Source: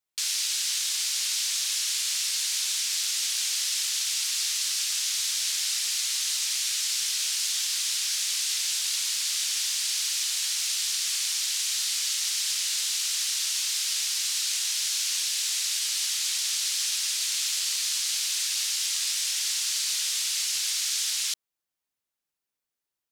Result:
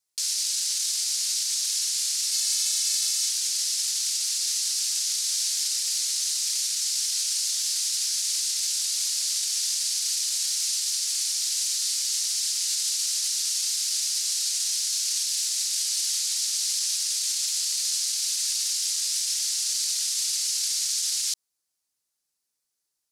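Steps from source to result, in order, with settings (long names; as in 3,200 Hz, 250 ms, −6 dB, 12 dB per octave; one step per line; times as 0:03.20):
flat-topped bell 7,000 Hz +10 dB
brickwall limiter −17.5 dBFS, peak gain reduction 12 dB
0:02.33–0:03.28: comb filter 2.3 ms, depth 70%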